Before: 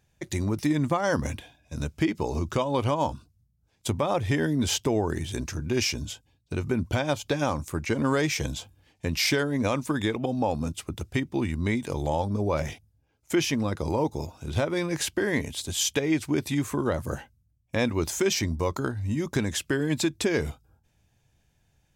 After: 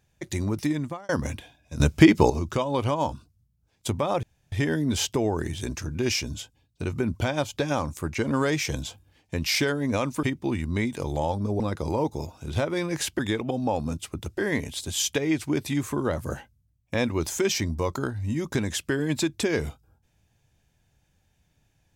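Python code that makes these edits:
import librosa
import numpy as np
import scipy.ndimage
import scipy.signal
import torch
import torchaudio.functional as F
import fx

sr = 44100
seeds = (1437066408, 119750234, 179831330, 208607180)

y = fx.edit(x, sr, fx.fade_out_span(start_s=0.63, length_s=0.46),
    fx.clip_gain(start_s=1.8, length_s=0.5, db=10.5),
    fx.insert_room_tone(at_s=4.23, length_s=0.29),
    fx.move(start_s=9.94, length_s=1.19, to_s=15.19),
    fx.cut(start_s=12.5, length_s=1.1), tone=tone)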